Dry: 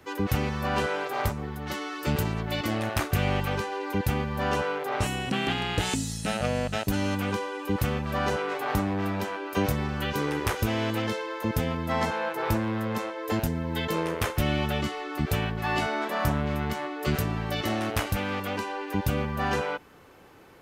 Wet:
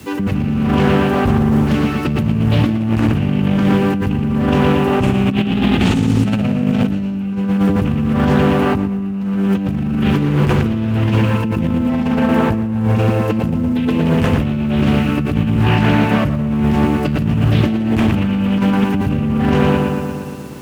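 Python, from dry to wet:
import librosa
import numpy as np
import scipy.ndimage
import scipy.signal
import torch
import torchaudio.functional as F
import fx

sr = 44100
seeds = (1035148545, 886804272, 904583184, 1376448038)

p1 = fx.bass_treble(x, sr, bass_db=11, treble_db=-5)
p2 = 10.0 ** (-11.5 / 20.0) * np.tanh(p1 / 10.0 ** (-11.5 / 20.0))
p3 = scipy.signal.sosfilt(scipy.signal.butter(2, 52.0, 'highpass', fs=sr, output='sos'), p2)
p4 = fx.echo_filtered(p3, sr, ms=117, feedback_pct=71, hz=4200.0, wet_db=-3.5)
p5 = fx.quant_dither(p4, sr, seeds[0], bits=6, dither='triangular')
p6 = p4 + (p5 * librosa.db_to_amplitude(-12.0))
p7 = fx.high_shelf(p6, sr, hz=11000.0, db=-5.0)
p8 = fx.hum_notches(p7, sr, base_hz=50, count=2)
p9 = fx.small_body(p8, sr, hz=(220.0, 2700.0), ring_ms=25, db=11)
p10 = fx.over_compress(p9, sr, threshold_db=-17.0, ratio=-1.0)
p11 = fx.doppler_dist(p10, sr, depth_ms=0.3)
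y = p11 * librosa.db_to_amplitude(2.0)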